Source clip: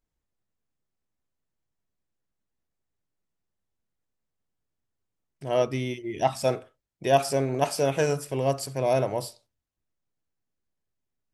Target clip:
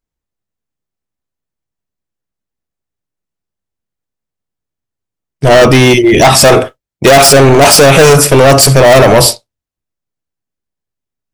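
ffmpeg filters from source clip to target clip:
ffmpeg -i in.wav -af "agate=range=-33dB:threshold=-36dB:ratio=3:detection=peak,volume=25.5dB,asoftclip=hard,volume=-25.5dB,apsyclip=36dB,volume=-1.5dB" out.wav

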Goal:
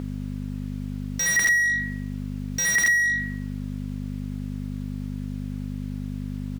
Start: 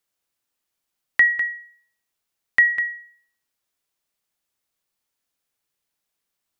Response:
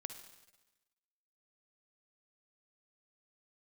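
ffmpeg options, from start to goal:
-filter_complex "[0:a]alimiter=limit=-18dB:level=0:latency=1:release=22,aecho=1:1:67|78:0.211|0.266,aeval=exprs='(mod(9.44*val(0)+1,2)-1)/9.44':channel_layout=same,aeval=exprs='val(0)+0.00631*(sin(2*PI*50*n/s)+sin(2*PI*2*50*n/s)/2+sin(2*PI*3*50*n/s)/3+sin(2*PI*4*50*n/s)/4+sin(2*PI*5*50*n/s)/5)':channel_layout=same,asplit=2[link_01][link_02];[link_02]highpass=frequency=720:poles=1,volume=33dB,asoftclip=type=tanh:threshold=-18.5dB[link_03];[link_01][link_03]amix=inputs=2:normalize=0,lowpass=frequency=2100:poles=1,volume=-6dB,volume=6dB"

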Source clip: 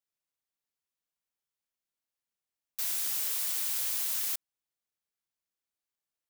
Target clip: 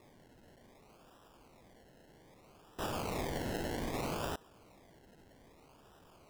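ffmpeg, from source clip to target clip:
ffmpeg -i in.wav -af "aeval=exprs='val(0)+0.5*0.00501*sgn(val(0))':channel_layout=same,acrusher=samples=29:mix=1:aa=0.000001:lfo=1:lforange=17.4:lforate=0.63,volume=-6.5dB" out.wav

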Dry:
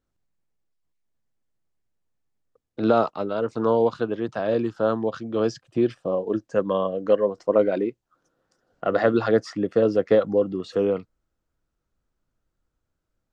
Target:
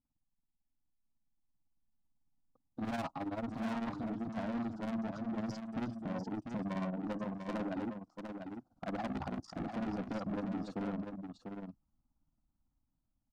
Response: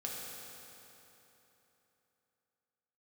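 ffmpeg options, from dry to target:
-filter_complex "[0:a]firequalizer=gain_entry='entry(120,0);entry(260,6);entry(450,-14);entry(820,1);entry(1900,-24);entry(4700,-11)':delay=0.05:min_phase=1,dynaudnorm=framelen=650:gausssize=5:maxgain=6dB,asoftclip=type=hard:threshold=-19.5dB,asettb=1/sr,asplit=3[link_01][link_02][link_03];[link_01]atrim=end=2.844[link_04];[link_02]atrim=start=2.84:end=3.5,asetpts=PTS-STARTPTS,afade=type=in:duration=0.004:curve=qsin,afade=type=out:start_time=0.656:duration=0.004:curve=qsin,aecho=1:1:7.3:0.78,atrim=end_sample=29106[link_05];[link_03]atrim=start=3.496[link_06];[link_04][link_05]acrossfade=duration=0.004:curve1=hsin:curve2=qsin[link_07];[link_07][link_06]acrossfade=duration=0.004:curve1=qsin:curve2=hsin,tremolo=f=18:d=0.85,equalizer=frequency=410:width_type=o:width=0.3:gain=-13,asettb=1/sr,asplit=3[link_08][link_09][link_10];[link_08]atrim=end=9.064[link_11];[link_09]atrim=start=9.06:end=9.71,asetpts=PTS-STARTPTS,afade=type=in:duration=0.004:curve=qsin,afade=type=out:start_time=0.646:duration=0.004:curve=qsin,aeval=exprs='val(0)*sin(2*PI*29*n/s)':channel_layout=same[link_12];[link_10]atrim=start=9.706[link_13];[link_11][link_12]acrossfade=duration=0.004:curve1=hsin:curve2=qsin[link_14];[link_14][link_13]acrossfade=duration=0.004:curve1=qsin:curve2=hsin,asoftclip=type=tanh:threshold=-30dB,aecho=1:1:695:0.473,volume=-4dB"

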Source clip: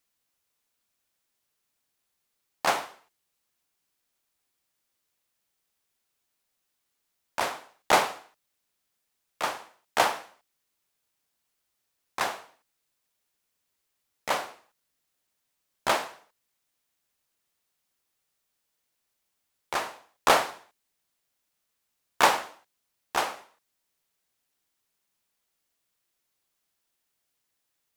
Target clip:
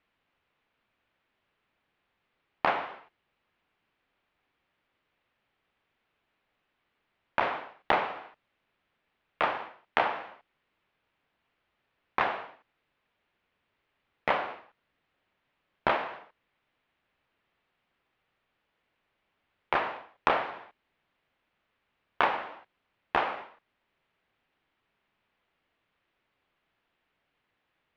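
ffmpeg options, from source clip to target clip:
ffmpeg -i in.wav -af "lowpass=frequency=2900:width=0.5412,lowpass=frequency=2900:width=1.3066,acompressor=threshold=-33dB:ratio=5,volume=9dB" out.wav

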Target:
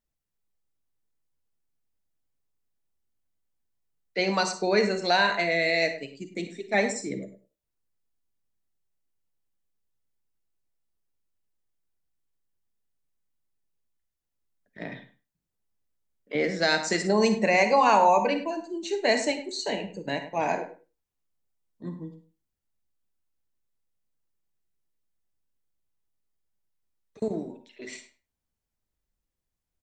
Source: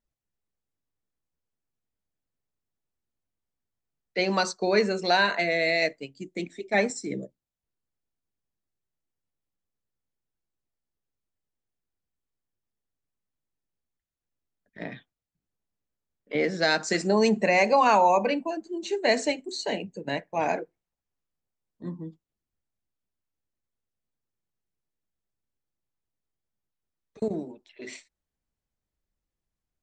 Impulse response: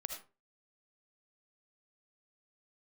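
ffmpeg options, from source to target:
-filter_complex "[0:a]asplit=2[link_01][link_02];[link_02]adelay=102,lowpass=frequency=2100:poles=1,volume=-11dB,asplit=2[link_03][link_04];[link_04]adelay=102,lowpass=frequency=2100:poles=1,volume=0.17[link_05];[link_01][link_03][link_05]amix=inputs=3:normalize=0,asplit=2[link_06][link_07];[1:a]atrim=start_sample=2205,asetrate=66150,aresample=44100,highshelf=frequency=6500:gain=7[link_08];[link_07][link_08]afir=irnorm=-1:irlink=0,volume=4dB[link_09];[link_06][link_09]amix=inputs=2:normalize=0,volume=-5.5dB"

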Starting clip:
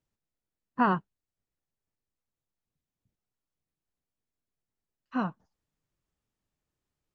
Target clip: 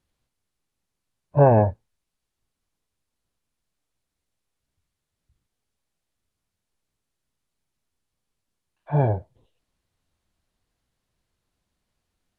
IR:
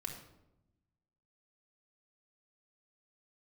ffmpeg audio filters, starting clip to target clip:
-af "asetrate=25442,aresample=44100,volume=8.5dB"

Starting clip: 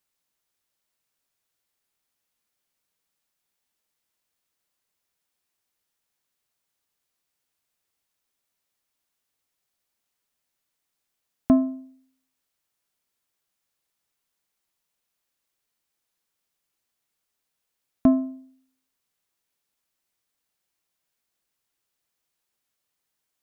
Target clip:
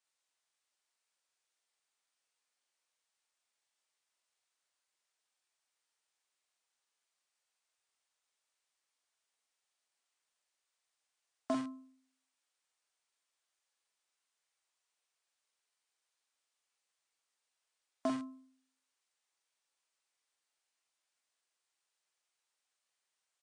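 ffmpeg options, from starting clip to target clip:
ffmpeg -i in.wav -filter_complex "[0:a]highpass=570,asplit=2[link_01][link_02];[link_02]aeval=exprs='(mod(26.6*val(0)+1,2)-1)/26.6':channel_layout=same,volume=-9.5dB[link_03];[link_01][link_03]amix=inputs=2:normalize=0,asplit=2[link_04][link_05];[link_05]adelay=45,volume=-4.5dB[link_06];[link_04][link_06]amix=inputs=2:normalize=0,volume=-6dB" -ar 22050 -c:a libmp3lame -b:a 56k out.mp3

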